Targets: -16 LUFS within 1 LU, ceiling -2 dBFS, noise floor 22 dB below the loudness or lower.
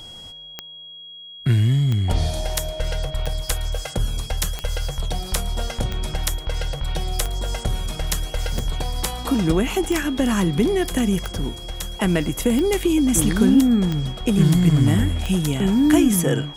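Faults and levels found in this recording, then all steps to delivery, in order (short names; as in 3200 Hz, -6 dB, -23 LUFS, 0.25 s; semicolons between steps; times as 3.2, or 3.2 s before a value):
clicks 12; steady tone 3300 Hz; tone level -37 dBFS; loudness -21.5 LUFS; peak -5.5 dBFS; loudness target -16.0 LUFS
-> de-click; notch 3300 Hz, Q 30; gain +5.5 dB; limiter -2 dBFS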